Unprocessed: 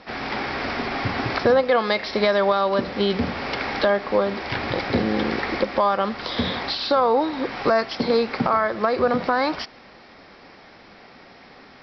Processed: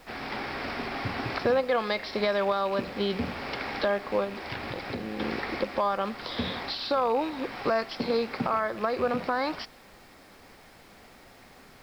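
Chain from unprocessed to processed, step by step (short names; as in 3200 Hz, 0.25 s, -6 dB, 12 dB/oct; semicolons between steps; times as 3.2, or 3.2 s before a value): rattling part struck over -33 dBFS, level -26 dBFS; 4.24–5.2 compressor, threshold -24 dBFS, peak gain reduction 8 dB; added noise pink -51 dBFS; gain -7 dB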